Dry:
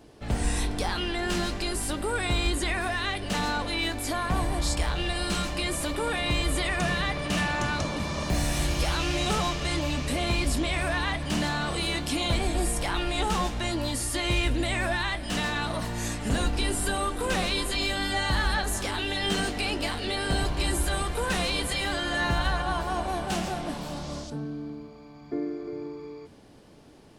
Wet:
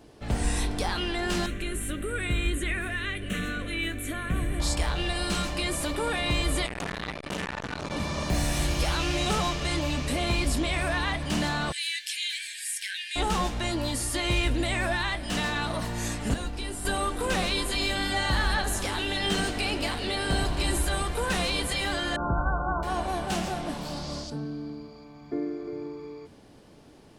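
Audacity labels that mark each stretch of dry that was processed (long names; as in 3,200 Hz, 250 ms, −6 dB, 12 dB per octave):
1.460000	4.600000	phaser with its sweep stopped centre 2,100 Hz, stages 4
6.660000	7.910000	saturating transformer saturates under 1,200 Hz
11.720000	13.160000	linear-phase brick-wall high-pass 1,500 Hz
16.340000	16.850000	clip gain −7 dB
17.600000	20.850000	echo with shifted repeats 81 ms, feedback 65%, per repeat −37 Hz, level −14.5 dB
22.160000	22.830000	linear-phase brick-wall low-pass 1,600 Hz
23.850000	25.040000	parametric band 4,700 Hz +8 dB 0.34 octaves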